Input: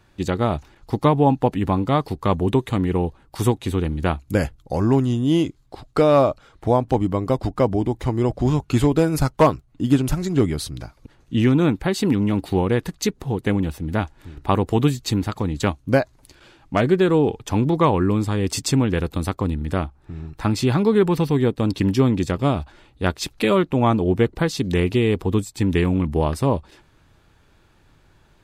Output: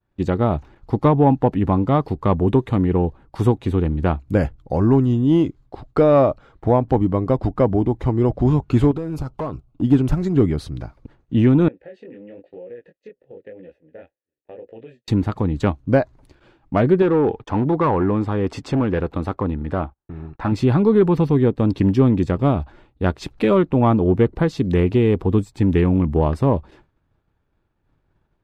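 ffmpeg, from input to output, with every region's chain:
-filter_complex "[0:a]asettb=1/sr,asplit=3[a][b][c];[a]atrim=end=8.914[d];[b]atrim=start=8.91:end=9.82,asetpts=PTS-STARTPTS,afade=t=in:d=0.004:c=qsin,afade=t=out:st=0.906:d=0.004:c=qsin,asuperstop=centerf=1800:order=4:qfactor=2.1,acompressor=threshold=-24dB:ratio=5:attack=3.2:release=140:knee=1:detection=peak,asoftclip=type=hard:threshold=-23.5dB[e];[c]atrim=start=9.816[f];[d][e]acrossfade=d=0.004:c1=hsin:c2=qsin[g];[g][f]acrossfade=d=0.004:c1=qsin:c2=hsin,asettb=1/sr,asplit=3[h][i][j];[h]atrim=end=11.684[k];[i]atrim=start=11.68:end=15.08,asetpts=PTS-STARTPTS,afade=t=in:d=0.004:c=qsin,afade=t=out:st=3.396:d=0.004:c=qsin,flanger=delay=16.5:depth=7.2:speed=1,asplit=3[l][m][n];[l]bandpass=f=530:t=q:w=8,volume=0dB[o];[m]bandpass=f=1.84k:t=q:w=8,volume=-6dB[p];[n]bandpass=f=2.48k:t=q:w=8,volume=-9dB[q];[o][p][q]amix=inputs=3:normalize=0,acompressor=threshold=-38dB:ratio=3:attack=3.2:release=140:knee=1:detection=peak[r];[j]atrim=start=15.076[s];[k][r]acrossfade=d=0.004:c1=hsin:c2=qsin[t];[t][s]acrossfade=d=0.004:c1=qsin:c2=hsin,asettb=1/sr,asplit=3[u][v][w];[u]atrim=end=17.024[x];[v]atrim=start=17.02:end=20.52,asetpts=PTS-STARTPTS,afade=t=in:d=0.004:c=qsin,afade=t=out:st=3.496:d=0.004:c=qsin,agate=range=-31dB:threshold=-44dB:ratio=16:release=100:detection=peak,asoftclip=type=hard:threshold=-14.5dB,asplit=2[y][z];[z]highpass=f=720:p=1,volume=10dB,asoftclip=type=tanh:threshold=-8dB[aa];[y][aa]amix=inputs=2:normalize=0,lowpass=f=1.7k:p=1,volume=-6dB[ab];[w]atrim=start=20.516[ac];[x][ab]acrossfade=d=0.004:c1=hsin:c2=qsin[ad];[ad][ac]acrossfade=d=0.004:c1=qsin:c2=hsin,acontrast=39,agate=range=-33dB:threshold=-39dB:ratio=3:detection=peak,lowpass=f=1.1k:p=1,volume=-2dB"

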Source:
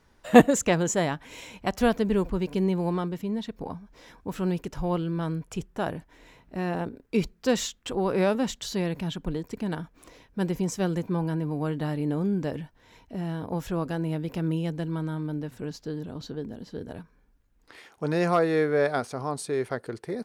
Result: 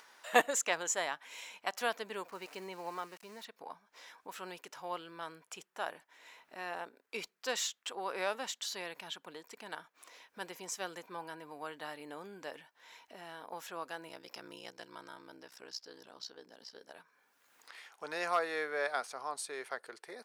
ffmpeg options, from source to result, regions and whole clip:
-filter_complex "[0:a]asettb=1/sr,asplit=3[a][b][c];[a]atrim=end=2.284[d];[b]atrim=start=2.28:end=3.45,asetpts=PTS-STARTPTS,afade=t=in:d=0.004:c=qsin,afade=t=out:st=1.166:d=0.004:c=qsin,lowpass=6.7k,aeval=exprs='val(0)*gte(abs(val(0)),0.0075)':c=same,equalizer=f=3.4k:t=o:w=0.24:g=-9[e];[c]atrim=start=3.446[f];[d][e]acrossfade=d=0.004:c1=hsin:c2=qsin[g];[g][f]acrossfade=d=0.004:c1=qsin:c2=hsin,asettb=1/sr,asplit=3[h][i][j];[h]atrim=end=14.084[k];[i]atrim=start=14.08:end=16.93,asetpts=PTS-STARTPTS,afade=t=in:d=0.004:c=qsin,afade=t=out:st=2.846:d=0.004:c=qsin,equalizer=f=5.2k:t=o:w=0.34:g=14,aeval=exprs='val(0)*sin(2*PI*31*n/s)':c=same[l];[j]atrim=start=16.926[m];[k][l]acrossfade=d=0.004:c1=hsin:c2=qsin[n];[n][m]acrossfade=d=0.004:c1=qsin:c2=hsin,highpass=870,acompressor=mode=upward:threshold=-45dB:ratio=2.5,volume=-3.5dB"

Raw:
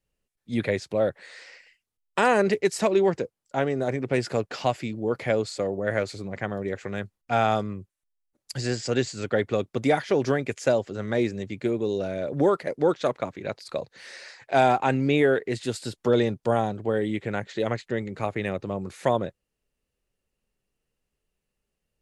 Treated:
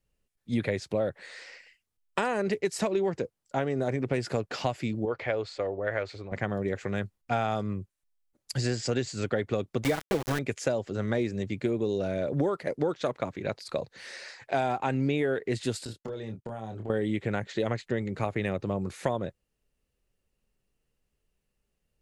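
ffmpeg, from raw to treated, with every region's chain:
-filter_complex "[0:a]asettb=1/sr,asplit=3[a][b][c];[a]atrim=end=5.054[d];[b]atrim=start=5.05:end=6.32,asetpts=PTS-STARTPTS,afade=t=in:d=0.004:c=qsin,afade=t=out:st=1.266:d=0.004:c=qsin,lowpass=3.4k,equalizer=f=180:w=0.96:g=-15[e];[c]atrim=start=6.316[f];[d][e]acrossfade=d=0.004:c1=hsin:c2=qsin[g];[g][f]acrossfade=d=0.004:c1=qsin:c2=hsin,asettb=1/sr,asplit=3[h][i][j];[h]atrim=end=9.844[k];[i]atrim=start=9.84:end=10.39,asetpts=PTS-STARTPTS,afade=t=in:d=0.004:c=qsin,afade=t=out:st=0.546:d=0.004:c=qsin,equalizer=f=130:w=3.8:g=-3,aecho=1:1:6.1:0.84,atrim=end_sample=24255,aeval=exprs='val(0)*gte(abs(val(0)),0.0668)':c=same[l];[j]atrim=start=10.386[m];[k][l]acrossfade=d=0.004:c1=hsin:c2=qsin[n];[n][m]acrossfade=d=0.004:c1=qsin:c2=hsin,asettb=1/sr,asplit=3[o][p][q];[o]atrim=end=15.854[r];[p]atrim=start=15.85:end=16.9,asetpts=PTS-STARTPTS,afade=t=in:d=0.004:c=qsin,afade=t=out:st=1.046:d=0.004:c=qsin,agate=range=-33dB:threshold=-35dB:ratio=3:release=100:detection=peak,acompressor=threshold=-35dB:ratio=12:attack=3.2:release=140:knee=1:detection=peak,asplit=2[s][t];[t]adelay=27,volume=-5dB[u];[s][u]amix=inputs=2:normalize=0,atrim=end_sample=46305[v];[q]atrim=start=16.896[w];[r][v]acrossfade=d=0.004:c1=hsin:c2=qsin[x];[x][w]acrossfade=d=0.004:c1=qsin:c2=hsin,acompressor=threshold=-25dB:ratio=5,lowshelf=f=170:g=4.5"

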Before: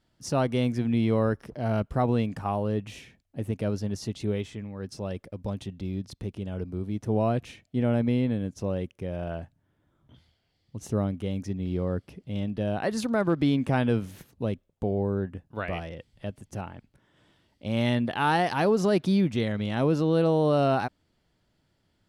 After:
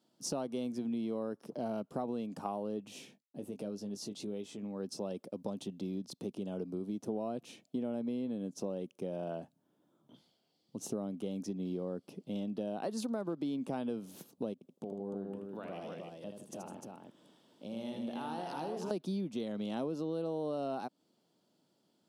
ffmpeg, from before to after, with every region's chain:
-filter_complex "[0:a]asettb=1/sr,asplit=3[a][b][c];[a]atrim=end=2.884[d];[b]atrim=start=2.88:end=4.63,asetpts=PTS-STARTPTS,afade=t=in:d=0.004:c=qsin,afade=t=out:st=1.746:d=0.004:c=qsin,agate=range=-33dB:threshold=-56dB:ratio=3:release=100:detection=peak,asplit=2[e][f];[f]adelay=20,volume=-9dB[g];[e][g]amix=inputs=2:normalize=0,atrim=end_sample=77175,acompressor=threshold=-41dB:ratio=2:attack=3.2:release=140:knee=1:detection=peak[h];[c]atrim=start=4.626[i];[d][h]acrossfade=d=0.004:c1=hsin:c2=qsin[j];[j][i]acrossfade=d=0.004:c1=qsin:c2=hsin,asettb=1/sr,asplit=3[k][l][m];[k]atrim=end=14.534[n];[l]atrim=start=14.53:end=18.91,asetpts=PTS-STARTPTS,afade=t=in:d=0.004:c=qsin,afade=t=out:st=4.376:d=0.004:c=qsin,acompressor=threshold=-41dB:ratio=3:attack=3.2:release=140:knee=1:detection=peak,aecho=1:1:80|157|302:0.501|0.266|0.668,atrim=end_sample=193158[o];[m]atrim=start=18.906[p];[n][o]acrossfade=d=0.004:c1=hsin:c2=qsin[q];[q][p]acrossfade=d=0.004:c1=qsin:c2=hsin,highpass=f=190:w=0.5412,highpass=f=190:w=1.3066,equalizer=f=1.9k:w=1.4:g=-14,acompressor=threshold=-35dB:ratio=6,volume=1dB"

